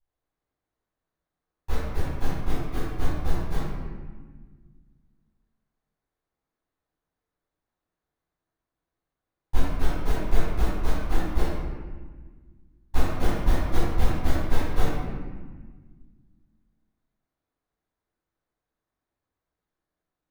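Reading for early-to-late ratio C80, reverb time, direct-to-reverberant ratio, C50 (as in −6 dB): −0.5 dB, 1.5 s, −17.5 dB, −3.5 dB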